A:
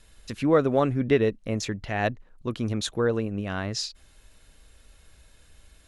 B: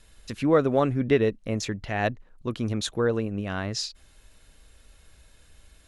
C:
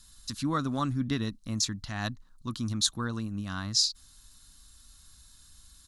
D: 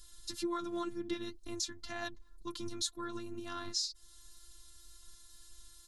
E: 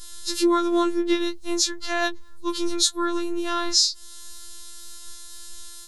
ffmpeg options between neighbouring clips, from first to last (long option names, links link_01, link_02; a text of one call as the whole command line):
ffmpeg -i in.wav -af anull out.wav
ffmpeg -i in.wav -af "firequalizer=gain_entry='entry(270,0);entry(430,-18);entry(1100,3);entry(1600,-2);entry(2300,-9);entry(4000,10)':delay=0.05:min_phase=1,volume=-3.5dB" out.wav
ffmpeg -i in.wav -af "flanger=delay=2.5:depth=9.1:regen=34:speed=2:shape=sinusoidal,afftfilt=real='hypot(re,im)*cos(PI*b)':imag='0':win_size=512:overlap=0.75,acompressor=threshold=-43dB:ratio=2,volume=5.5dB" out.wav
ffmpeg -i in.wav -af "afftfilt=real='re*4*eq(mod(b,16),0)':imag='im*4*eq(mod(b,16),0)':win_size=2048:overlap=0.75,volume=7dB" out.wav